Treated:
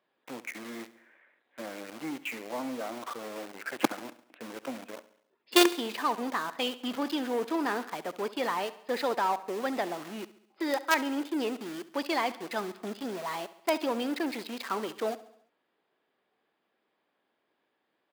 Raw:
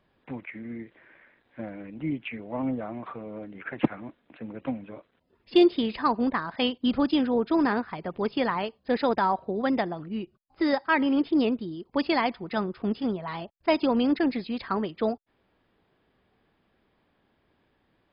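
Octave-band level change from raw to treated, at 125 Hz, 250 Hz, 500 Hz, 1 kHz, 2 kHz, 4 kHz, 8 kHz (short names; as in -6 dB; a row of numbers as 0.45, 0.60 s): -13.5 dB, -8.0 dB, -4.0 dB, -2.5 dB, -1.5 dB, +1.0 dB, n/a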